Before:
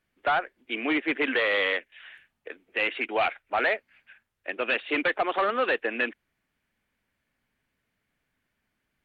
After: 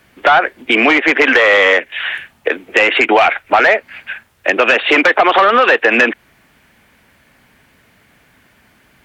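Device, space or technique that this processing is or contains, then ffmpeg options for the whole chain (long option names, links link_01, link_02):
mastering chain: -filter_complex "[0:a]highpass=47,equalizer=frequency=800:width_type=o:width=0.97:gain=2.5,acrossover=split=440|990|2500[link_01][link_02][link_03][link_04];[link_01]acompressor=threshold=-42dB:ratio=4[link_05];[link_02]acompressor=threshold=-32dB:ratio=4[link_06];[link_03]acompressor=threshold=-28dB:ratio=4[link_07];[link_04]acompressor=threshold=-41dB:ratio=4[link_08];[link_05][link_06][link_07][link_08]amix=inputs=4:normalize=0,acompressor=threshold=-28dB:ratio=2.5,asoftclip=type=tanh:threshold=-20dB,asoftclip=type=hard:threshold=-23.5dB,alimiter=level_in=28dB:limit=-1dB:release=50:level=0:latency=1,volume=-1.5dB"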